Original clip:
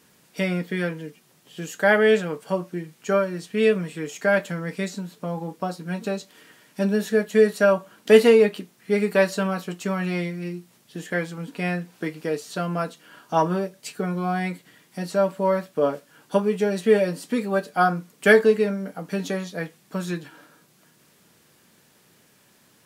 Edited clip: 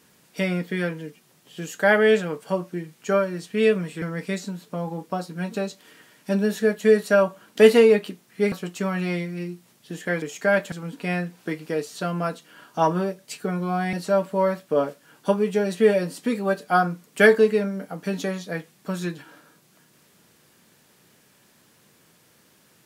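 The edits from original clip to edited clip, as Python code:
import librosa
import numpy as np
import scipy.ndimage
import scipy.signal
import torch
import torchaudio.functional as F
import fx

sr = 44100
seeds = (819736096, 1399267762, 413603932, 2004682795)

y = fx.edit(x, sr, fx.move(start_s=4.02, length_s=0.5, to_s=11.27),
    fx.cut(start_s=9.02, length_s=0.55),
    fx.cut(start_s=14.48, length_s=0.51), tone=tone)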